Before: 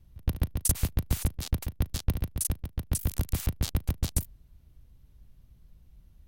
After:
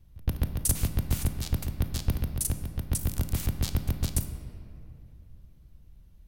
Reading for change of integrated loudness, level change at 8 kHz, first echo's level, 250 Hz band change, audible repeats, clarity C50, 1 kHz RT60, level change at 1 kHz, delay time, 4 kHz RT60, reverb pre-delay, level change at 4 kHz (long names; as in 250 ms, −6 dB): +0.5 dB, 0.0 dB, no echo audible, +1.5 dB, no echo audible, 9.0 dB, 2.5 s, +0.5 dB, no echo audible, 1.5 s, 20 ms, +0.5 dB